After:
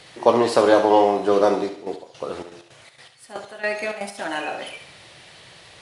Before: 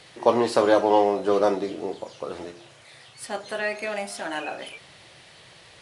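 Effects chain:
0:01.68–0:04.17: gate pattern "x...x..xxx.x.xx." 161 BPM −12 dB
feedback echo with a high-pass in the loop 70 ms, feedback 48%, high-pass 420 Hz, level −8.5 dB
level +3 dB

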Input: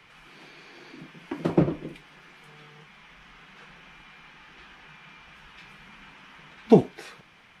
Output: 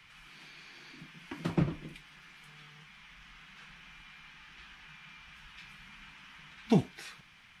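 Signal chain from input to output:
parametric band 470 Hz −14.5 dB 2.1 octaves

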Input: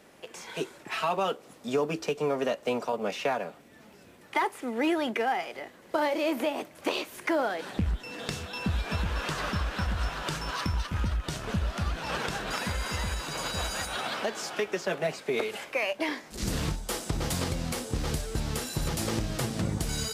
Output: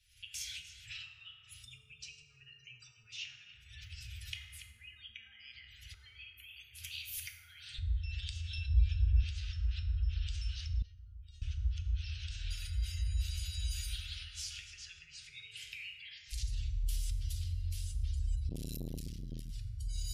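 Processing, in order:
camcorder AGC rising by 56 dB per second
echo with a time of its own for lows and highs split 1,300 Hz, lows 124 ms, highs 284 ms, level −14 dB
gate on every frequency bin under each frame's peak −25 dB strong
octave-band graphic EQ 125/250/500/1,000/2,000/4,000/8,000 Hz +8/−3/−11/+3/−12/−5/−11 dB
convolution reverb RT60 2.0 s, pre-delay 4 ms, DRR 1 dB
downward compressor 2.5 to 1, threshold −28 dBFS, peak gain reduction 8 dB
inverse Chebyshev band-stop filter 170–1,100 Hz, stop band 50 dB
0:08.58–0:09.24: low-shelf EQ 98 Hz +9.5 dB
0:10.82–0:11.42: tuned comb filter 470 Hz, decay 0.3 s, harmonics all, mix 90%
0:18.49–0:19.50: saturating transformer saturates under 300 Hz

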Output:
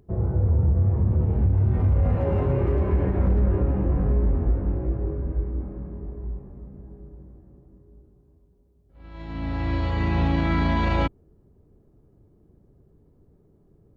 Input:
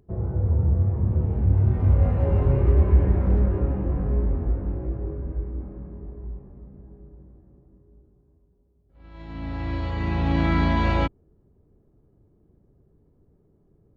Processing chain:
0:02.15–0:03.19: high-pass filter 140 Hz 6 dB per octave
brickwall limiter −16.5 dBFS, peak gain reduction 7 dB
level +3 dB

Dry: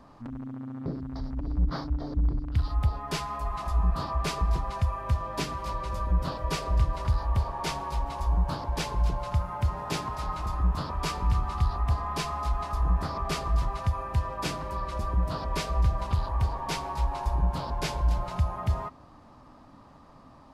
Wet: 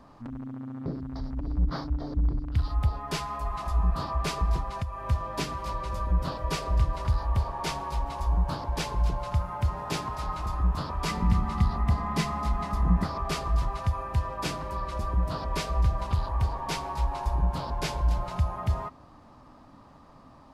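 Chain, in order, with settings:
0:04.62–0:05.04: downward compressor 10 to 1, threshold −28 dBFS, peak gain reduction 8.5 dB
0:11.08–0:13.04: hollow resonant body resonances 200/2,000 Hz, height 14 dB, ringing for 45 ms

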